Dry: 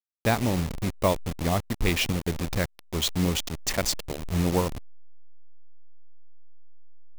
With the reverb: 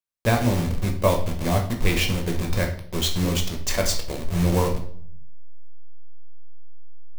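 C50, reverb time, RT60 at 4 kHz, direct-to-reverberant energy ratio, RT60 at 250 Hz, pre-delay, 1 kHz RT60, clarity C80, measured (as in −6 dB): 9.0 dB, 0.60 s, 0.50 s, 2.0 dB, 0.80 s, 5 ms, 0.55 s, 13.0 dB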